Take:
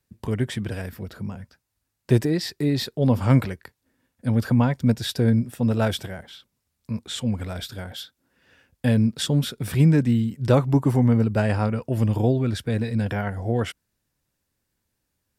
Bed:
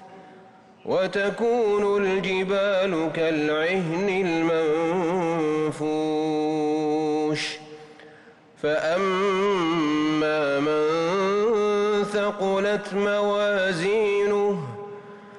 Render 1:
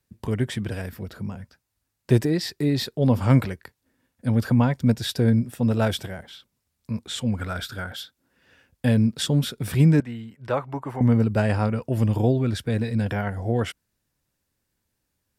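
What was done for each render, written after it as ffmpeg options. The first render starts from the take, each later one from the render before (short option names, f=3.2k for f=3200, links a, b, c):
-filter_complex "[0:a]asettb=1/sr,asplit=3[a][b][c];[a]atrim=end=7.374[d];[b]atrim=start=7.37:end=7.96,asetpts=PTS-STARTPTS,afade=t=in:d=0.004:c=qsin,afade=t=out:st=0.586:d=0.004:c=qsin,equalizer=f=1.4k:w=2.9:g=11[e];[c]atrim=start=7.956[f];[d][e]acrossfade=d=0.004:c1=hsin:c2=qsin[g];[g][f]acrossfade=d=0.004:c1=qsin:c2=hsin,asettb=1/sr,asplit=3[h][i][j];[h]atrim=end=10.004[k];[i]atrim=start=10:end=11.01,asetpts=PTS-STARTPTS,afade=t=in:d=0.004:c=qsin,afade=t=out:st=1.006:d=0.004:c=qsin,acrossover=split=570 2600:gain=0.178 1 0.2[l][m][n];[l][m][n]amix=inputs=3:normalize=0[o];[j]atrim=start=11.006[p];[k][o]acrossfade=d=0.004:c1=hsin:c2=qsin[q];[q][p]acrossfade=d=0.004:c1=qsin:c2=hsin"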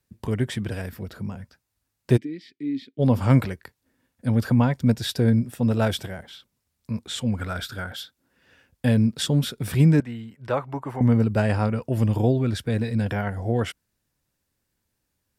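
-filter_complex "[0:a]asplit=3[a][b][c];[a]afade=t=out:st=2.16:d=0.02[d];[b]asplit=3[e][f][g];[e]bandpass=f=270:t=q:w=8,volume=0dB[h];[f]bandpass=f=2.29k:t=q:w=8,volume=-6dB[i];[g]bandpass=f=3.01k:t=q:w=8,volume=-9dB[j];[h][i][j]amix=inputs=3:normalize=0,afade=t=in:st=2.16:d=0.02,afade=t=out:st=2.98:d=0.02[k];[c]afade=t=in:st=2.98:d=0.02[l];[d][k][l]amix=inputs=3:normalize=0"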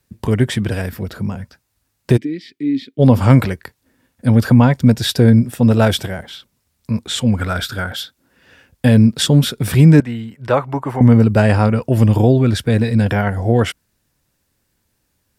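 -af "alimiter=level_in=9.5dB:limit=-1dB:release=50:level=0:latency=1"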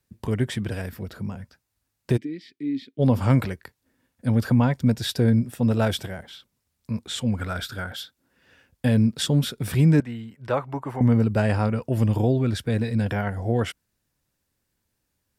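-af "volume=-9dB"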